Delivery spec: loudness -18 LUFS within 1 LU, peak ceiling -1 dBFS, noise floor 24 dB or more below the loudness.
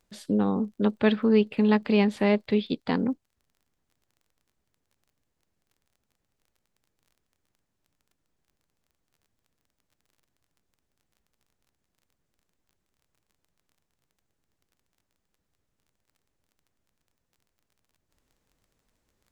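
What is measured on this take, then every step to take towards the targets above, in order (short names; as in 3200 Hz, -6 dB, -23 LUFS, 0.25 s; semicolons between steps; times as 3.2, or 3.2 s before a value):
ticks 24/s; loudness -24.5 LUFS; peak -10.0 dBFS; loudness target -18.0 LUFS
-> de-click; gain +6.5 dB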